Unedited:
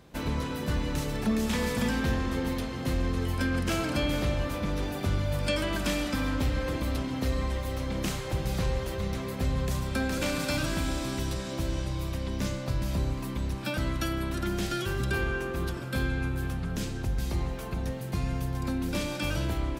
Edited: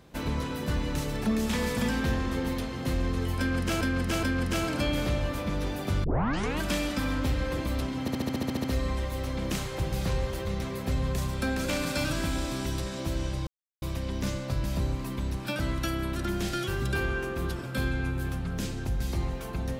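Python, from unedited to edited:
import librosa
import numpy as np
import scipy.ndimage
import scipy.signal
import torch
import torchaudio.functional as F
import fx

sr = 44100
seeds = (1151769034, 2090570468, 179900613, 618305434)

y = fx.edit(x, sr, fx.repeat(start_s=3.39, length_s=0.42, count=3),
    fx.tape_start(start_s=5.2, length_s=0.57),
    fx.stutter(start_s=7.17, slice_s=0.07, count=10),
    fx.insert_silence(at_s=12.0, length_s=0.35), tone=tone)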